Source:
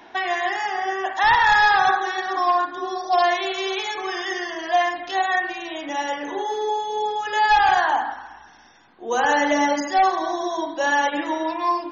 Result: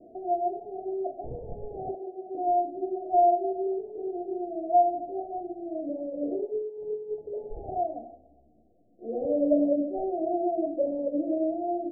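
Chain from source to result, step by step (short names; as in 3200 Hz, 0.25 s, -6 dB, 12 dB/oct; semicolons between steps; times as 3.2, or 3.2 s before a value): 1.94–2.35 tilt +2.5 dB/oct; 6.08–7.18 negative-ratio compressor -27 dBFS, ratio -0.5; Chebyshev low-pass 710 Hz, order 10; 7.87–9.22 ensemble effect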